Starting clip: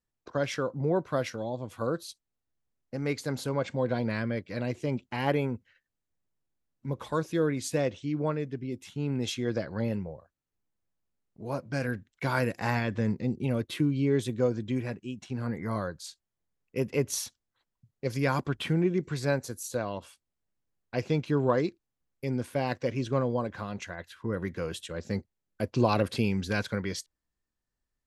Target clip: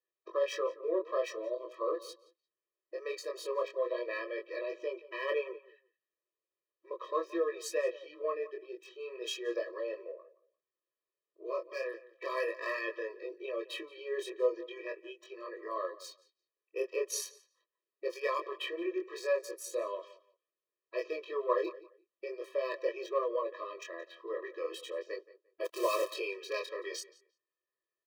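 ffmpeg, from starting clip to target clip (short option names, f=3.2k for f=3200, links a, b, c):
-filter_complex "[0:a]acrossover=split=440|4600[a][b][c];[a]acompressor=threshold=-38dB:ratio=6[d];[c]aeval=exprs='sgn(val(0))*max(abs(val(0))-0.00376,0)':c=same[e];[d][b][e]amix=inputs=3:normalize=0,flanger=delay=20:depth=4.8:speed=0.39,asplit=2[f][g];[g]asoftclip=type=tanh:threshold=-31.5dB,volume=-10dB[h];[f][h]amix=inputs=2:normalize=0,asplit=3[i][j][k];[i]afade=t=out:st=25.64:d=0.02[l];[j]acrusher=bits=7:dc=4:mix=0:aa=0.000001,afade=t=in:st=25.64:d=0.02,afade=t=out:st=26.13:d=0.02[m];[k]afade=t=in:st=26.13:d=0.02[n];[l][m][n]amix=inputs=3:normalize=0,asplit=2[o][p];[p]adelay=174,lowpass=f=3.5k:p=1,volume=-18dB,asplit=2[q][r];[r]adelay=174,lowpass=f=3.5k:p=1,volume=0.19[s];[o][q][s]amix=inputs=3:normalize=0,afftfilt=real='re*eq(mod(floor(b*sr/1024/330),2),1)':imag='im*eq(mod(floor(b*sr/1024/330),2),1)':win_size=1024:overlap=0.75,volume=1.5dB"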